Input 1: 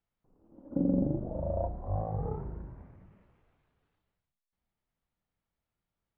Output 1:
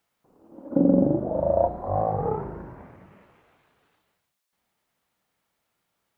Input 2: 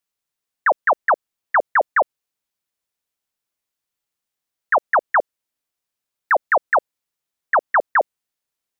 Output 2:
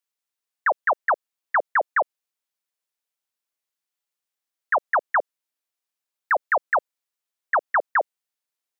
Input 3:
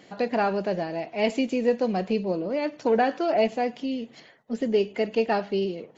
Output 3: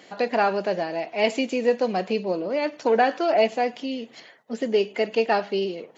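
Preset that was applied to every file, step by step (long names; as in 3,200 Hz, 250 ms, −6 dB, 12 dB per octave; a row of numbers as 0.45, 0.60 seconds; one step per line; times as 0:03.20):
high-pass filter 440 Hz 6 dB per octave
loudness normalisation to −24 LKFS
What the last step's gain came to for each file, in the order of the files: +14.5, −3.5, +4.5 decibels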